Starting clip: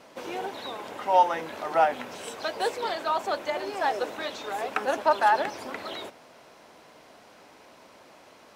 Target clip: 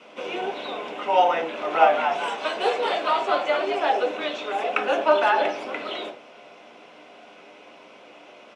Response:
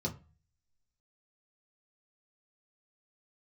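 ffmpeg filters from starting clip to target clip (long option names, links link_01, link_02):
-filter_complex "[0:a]highpass=420,lowpass=6100,asplit=3[link_01][link_02][link_03];[link_01]afade=type=out:start_time=1.68:duration=0.02[link_04];[link_02]asplit=7[link_05][link_06][link_07][link_08][link_09][link_10][link_11];[link_06]adelay=220,afreqshift=100,volume=-6dB[link_12];[link_07]adelay=440,afreqshift=200,volume=-11.8dB[link_13];[link_08]adelay=660,afreqshift=300,volume=-17.7dB[link_14];[link_09]adelay=880,afreqshift=400,volume=-23.5dB[link_15];[link_10]adelay=1100,afreqshift=500,volume=-29.4dB[link_16];[link_11]adelay=1320,afreqshift=600,volume=-35.2dB[link_17];[link_05][link_12][link_13][link_14][link_15][link_16][link_17]amix=inputs=7:normalize=0,afade=type=in:start_time=1.68:duration=0.02,afade=type=out:start_time=3.73:duration=0.02[link_18];[link_03]afade=type=in:start_time=3.73:duration=0.02[link_19];[link_04][link_18][link_19]amix=inputs=3:normalize=0[link_20];[1:a]atrim=start_sample=2205,asetrate=25137,aresample=44100[link_21];[link_20][link_21]afir=irnorm=-1:irlink=0"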